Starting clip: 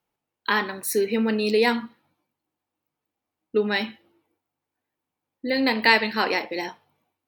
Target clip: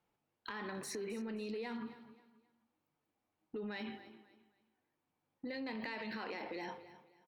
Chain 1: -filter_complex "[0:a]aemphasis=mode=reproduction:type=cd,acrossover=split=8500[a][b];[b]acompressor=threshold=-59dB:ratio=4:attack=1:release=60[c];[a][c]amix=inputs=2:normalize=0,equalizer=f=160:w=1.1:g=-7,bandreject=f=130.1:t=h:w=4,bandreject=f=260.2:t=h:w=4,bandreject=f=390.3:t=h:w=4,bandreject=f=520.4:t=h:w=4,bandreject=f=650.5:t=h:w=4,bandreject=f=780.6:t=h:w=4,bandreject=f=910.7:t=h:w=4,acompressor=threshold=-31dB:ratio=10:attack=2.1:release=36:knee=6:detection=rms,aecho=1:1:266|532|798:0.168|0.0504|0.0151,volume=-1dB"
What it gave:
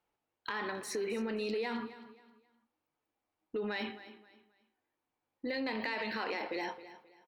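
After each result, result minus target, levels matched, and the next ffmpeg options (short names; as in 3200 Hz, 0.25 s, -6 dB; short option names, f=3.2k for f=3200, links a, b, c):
compressor: peak gain reduction -7 dB; 125 Hz band -4.5 dB
-filter_complex "[0:a]aemphasis=mode=reproduction:type=cd,acrossover=split=8500[a][b];[b]acompressor=threshold=-59dB:ratio=4:attack=1:release=60[c];[a][c]amix=inputs=2:normalize=0,equalizer=f=160:w=1.1:g=-7,bandreject=f=130.1:t=h:w=4,bandreject=f=260.2:t=h:w=4,bandreject=f=390.3:t=h:w=4,bandreject=f=520.4:t=h:w=4,bandreject=f=650.5:t=h:w=4,bandreject=f=780.6:t=h:w=4,bandreject=f=910.7:t=h:w=4,acompressor=threshold=-38.5dB:ratio=10:attack=2.1:release=36:knee=6:detection=rms,aecho=1:1:266|532|798:0.168|0.0504|0.0151,volume=-1dB"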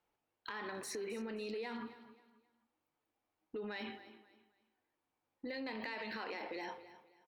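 125 Hz band -4.0 dB
-filter_complex "[0:a]aemphasis=mode=reproduction:type=cd,acrossover=split=8500[a][b];[b]acompressor=threshold=-59dB:ratio=4:attack=1:release=60[c];[a][c]amix=inputs=2:normalize=0,equalizer=f=160:w=1.1:g=2.5,bandreject=f=130.1:t=h:w=4,bandreject=f=260.2:t=h:w=4,bandreject=f=390.3:t=h:w=4,bandreject=f=520.4:t=h:w=4,bandreject=f=650.5:t=h:w=4,bandreject=f=780.6:t=h:w=4,bandreject=f=910.7:t=h:w=4,acompressor=threshold=-38.5dB:ratio=10:attack=2.1:release=36:knee=6:detection=rms,aecho=1:1:266|532|798:0.168|0.0504|0.0151,volume=-1dB"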